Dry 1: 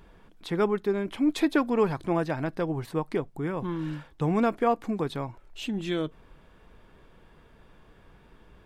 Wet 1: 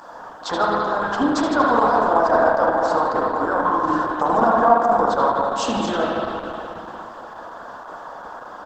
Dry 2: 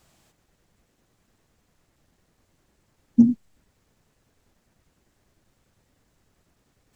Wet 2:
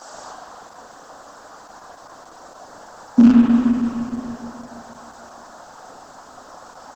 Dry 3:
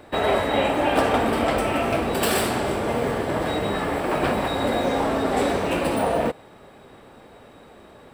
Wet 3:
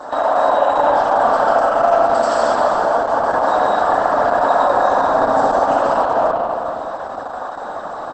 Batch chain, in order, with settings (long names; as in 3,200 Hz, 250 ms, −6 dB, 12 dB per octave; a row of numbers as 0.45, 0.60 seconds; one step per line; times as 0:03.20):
loose part that buzzes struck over −24 dBFS, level −22 dBFS
inverse Chebyshev high-pass filter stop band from 150 Hz, stop band 40 dB
flat-topped bell 2,900 Hz −8.5 dB 1.2 octaves
downward compressor 2 to 1, threshold −42 dBFS
brickwall limiter −28.5 dBFS
high-frequency loss of the air 87 metres
phaser with its sweep stopped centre 930 Hz, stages 4
on a send: repeating echo 77 ms, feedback 51%, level −11 dB
on the sum: spring reverb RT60 2.8 s, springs 39/59 ms, chirp 30 ms, DRR −3.5 dB
Opus 10 kbit/s 48,000 Hz
normalise the peak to −1.5 dBFS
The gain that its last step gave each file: +25.0, +31.5, +21.5 decibels